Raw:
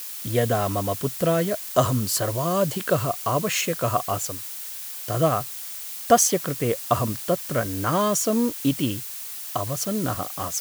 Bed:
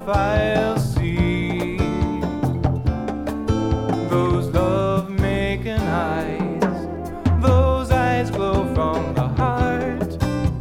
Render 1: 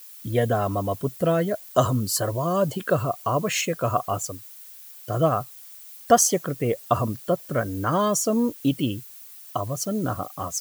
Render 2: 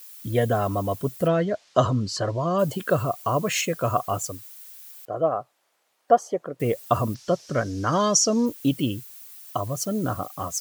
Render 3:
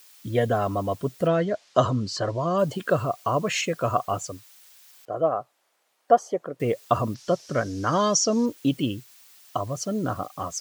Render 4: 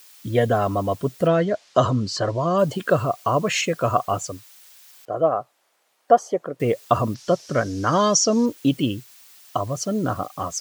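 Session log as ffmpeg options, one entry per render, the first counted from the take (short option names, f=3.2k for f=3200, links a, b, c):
-af "afftdn=nr=13:nf=-35"
-filter_complex "[0:a]asplit=3[a][b][c];[a]afade=t=out:st=1.27:d=0.02[d];[b]lowpass=f=5.8k:w=0.5412,lowpass=f=5.8k:w=1.3066,afade=t=in:st=1.27:d=0.02,afade=t=out:st=2.58:d=0.02[e];[c]afade=t=in:st=2.58:d=0.02[f];[d][e][f]amix=inputs=3:normalize=0,asettb=1/sr,asplit=3[g][h][i];[g]atrim=end=5.054[j];[h]atrim=start=5.05:end=6.6,asetpts=PTS-STARTPTS,afade=t=in:d=0.004:c=qsin,afade=t=out:st=1.546:d=0.004:c=qsin,bandpass=f=610:t=q:w=1.1[k];[i]atrim=start=6.596[l];[j][k]acrossfade=d=0.004:c1=hsin:c2=qsin[m];[m][l]acrossfade=d=0.004:c1=qsin:c2=hsin,asplit=3[n][o][p];[n]afade=t=out:st=7.14:d=0.02[q];[o]lowpass=f=5.6k:t=q:w=3.8,afade=t=in:st=7.14:d=0.02,afade=t=out:st=8.45:d=0.02[r];[p]afade=t=in:st=8.45:d=0.02[s];[q][r][s]amix=inputs=3:normalize=0"
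-filter_complex "[0:a]acrossover=split=7200[a][b];[b]acompressor=threshold=-51dB:ratio=4:attack=1:release=60[c];[a][c]amix=inputs=2:normalize=0,lowshelf=f=110:g=-5"
-af "volume=3.5dB,alimiter=limit=-3dB:level=0:latency=1"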